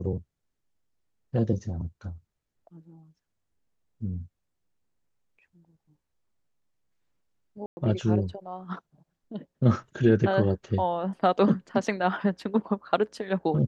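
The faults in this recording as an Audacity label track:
7.660000	7.770000	dropout 110 ms

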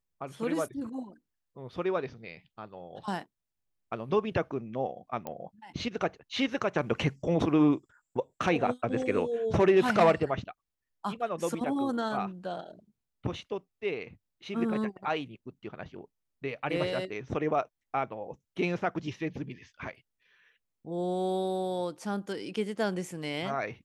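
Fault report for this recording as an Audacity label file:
5.270000	5.270000	pop -22 dBFS

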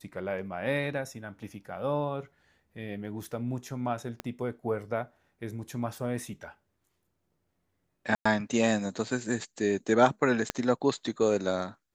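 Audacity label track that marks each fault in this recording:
4.200000	4.200000	pop -20 dBFS
8.150000	8.260000	dropout 105 ms
10.500000	10.500000	pop -12 dBFS

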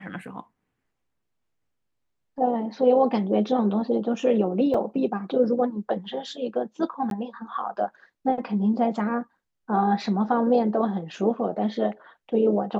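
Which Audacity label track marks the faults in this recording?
4.740000	4.740000	dropout 4.3 ms
7.100000	7.110000	dropout 12 ms

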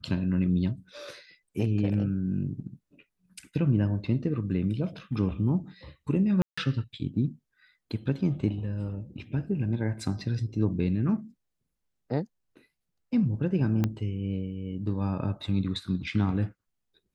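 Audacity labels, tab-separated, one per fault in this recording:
6.420000	6.580000	dropout 155 ms
13.840000	13.840000	pop -14 dBFS

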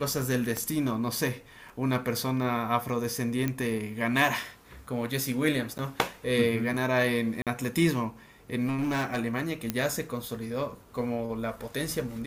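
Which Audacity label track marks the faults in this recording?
0.570000	0.570000	pop -17 dBFS
3.480000	3.480000	pop -15 dBFS
5.780000	5.790000	dropout 9.7 ms
7.420000	7.470000	dropout 47 ms
8.660000	9.190000	clipped -24.5 dBFS
9.700000	9.700000	pop -12 dBFS

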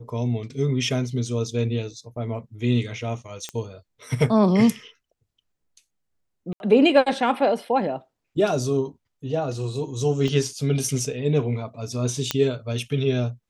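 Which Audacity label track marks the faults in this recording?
3.490000	3.490000	pop -16 dBFS
6.530000	6.600000	dropout 71 ms
10.280000	10.280000	dropout 2.3 ms
12.310000	12.310000	pop -6 dBFS

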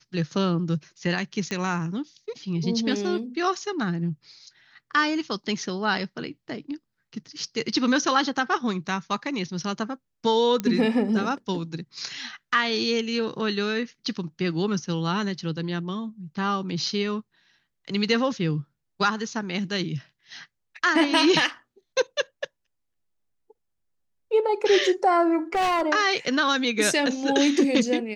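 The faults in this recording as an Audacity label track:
1.510000	1.510000	pop -16 dBFS
10.600000	10.600000	pop -13 dBFS
25.530000	25.830000	clipped -20.5 dBFS

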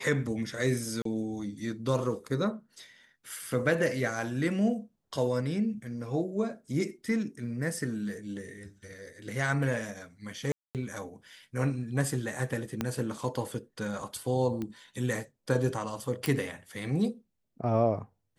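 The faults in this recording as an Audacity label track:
1.020000	1.050000	dropout 33 ms
10.520000	10.750000	dropout 228 ms
12.810000	12.810000	pop -15 dBFS
14.620000	14.620000	pop -23 dBFS
16.260000	16.260000	pop

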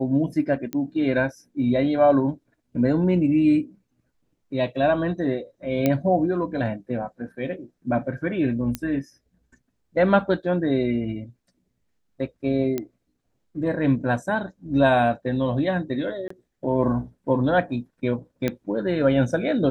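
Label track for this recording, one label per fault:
0.730000	0.730000	pop -16 dBFS
5.860000	5.860000	pop -8 dBFS
8.750000	8.750000	pop -11 dBFS
12.780000	12.780000	pop -13 dBFS
16.280000	16.300000	dropout 24 ms
18.480000	18.480000	pop -11 dBFS

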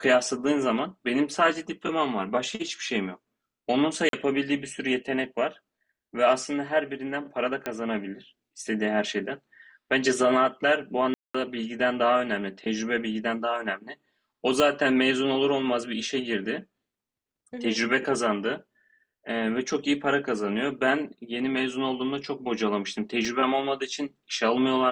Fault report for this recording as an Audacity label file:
4.090000	4.130000	dropout 42 ms
7.660000	7.660000	pop -15 dBFS
11.140000	11.350000	dropout 205 ms
14.600000	14.600000	pop -10 dBFS
23.250000	23.250000	dropout 2.2 ms

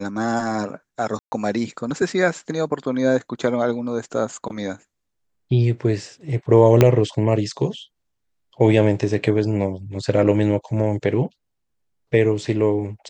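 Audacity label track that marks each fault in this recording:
1.190000	1.320000	dropout 130 ms
6.810000	6.810000	pop -1 dBFS

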